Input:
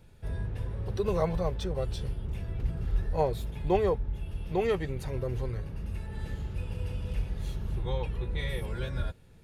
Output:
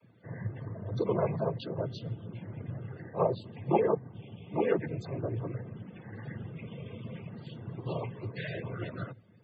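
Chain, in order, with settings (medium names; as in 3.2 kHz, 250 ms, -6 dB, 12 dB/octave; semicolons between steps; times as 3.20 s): noise-vocoded speech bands 16; loudest bins only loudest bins 64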